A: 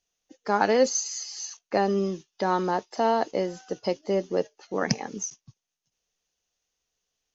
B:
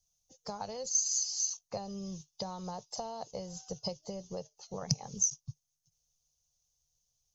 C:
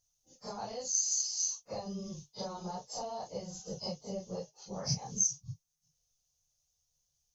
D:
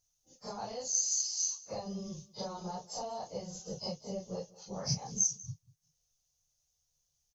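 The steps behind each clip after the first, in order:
compression 5:1, threshold -28 dBFS, peak gain reduction 11.5 dB; harmonic-percussive split percussive +4 dB; FFT filter 150 Hz 0 dB, 300 Hz -29 dB, 500 Hz -15 dB, 720 Hz -14 dB, 1.1 kHz -16 dB, 1.7 kHz -29 dB, 4.2 kHz -9 dB, 6.2 kHz -3 dB; trim +5 dB
phase randomisation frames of 100 ms
delay 191 ms -21 dB

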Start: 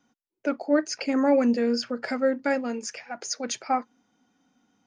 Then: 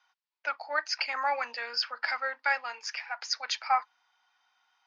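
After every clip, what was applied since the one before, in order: Chebyshev band-pass 900–4900 Hz, order 3; trim +4.5 dB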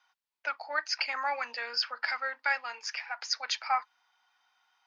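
dynamic bell 610 Hz, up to -4 dB, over -37 dBFS, Q 0.71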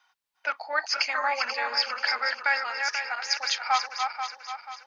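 backward echo that repeats 243 ms, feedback 64%, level -5 dB; trim +4 dB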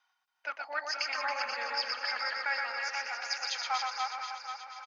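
reverse bouncing-ball echo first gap 120 ms, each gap 1.3×, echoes 5; trim -8.5 dB

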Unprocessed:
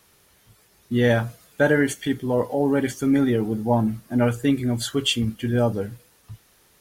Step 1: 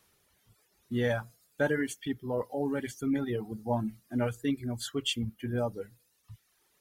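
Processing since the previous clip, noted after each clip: reverb removal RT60 1.1 s; trim -9 dB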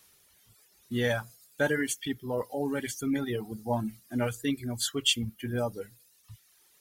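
treble shelf 2.3 kHz +9.5 dB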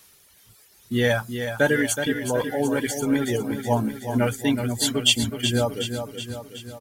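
feedback delay 372 ms, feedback 56%, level -8 dB; trim +7 dB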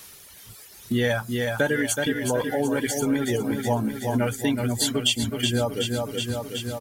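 compression 2.5:1, threshold -34 dBFS, peak gain reduction 14 dB; trim +8.5 dB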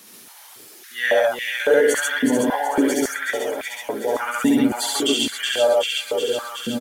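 on a send: loudspeakers at several distances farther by 23 m -1 dB, 47 m 0 dB; on the sum: step-sequenced high-pass 3.6 Hz 230–2300 Hz; trim -2.5 dB

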